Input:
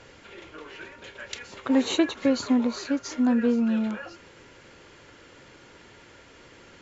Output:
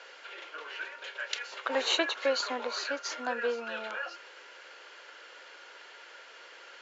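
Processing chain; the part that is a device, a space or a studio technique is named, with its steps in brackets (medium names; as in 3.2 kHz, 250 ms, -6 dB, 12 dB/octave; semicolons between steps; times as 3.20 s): phone speaker on a table (cabinet simulation 490–6800 Hz, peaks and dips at 1.5 kHz +6 dB, 2.9 kHz +4 dB, 4.4 kHz +3 dB)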